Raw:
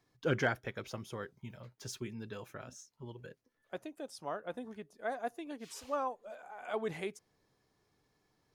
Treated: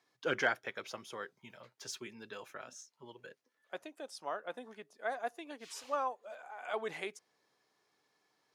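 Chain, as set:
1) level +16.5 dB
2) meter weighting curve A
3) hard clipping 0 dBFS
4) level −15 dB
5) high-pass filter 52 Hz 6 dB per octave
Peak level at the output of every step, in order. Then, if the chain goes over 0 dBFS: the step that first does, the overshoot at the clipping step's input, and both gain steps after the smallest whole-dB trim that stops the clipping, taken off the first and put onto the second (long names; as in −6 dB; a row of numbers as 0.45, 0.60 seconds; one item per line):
−2.5, −2.5, −2.5, −17.5, −17.5 dBFS
no step passes full scale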